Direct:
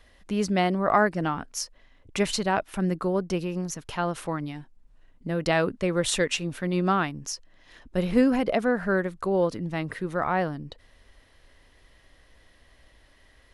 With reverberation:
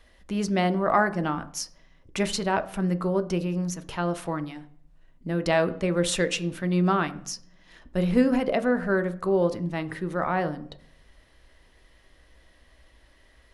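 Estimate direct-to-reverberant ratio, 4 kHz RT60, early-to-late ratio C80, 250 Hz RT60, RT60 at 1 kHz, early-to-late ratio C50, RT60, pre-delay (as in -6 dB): 9.5 dB, 0.60 s, 20.0 dB, 0.75 s, 0.55 s, 16.5 dB, 0.60 s, 3 ms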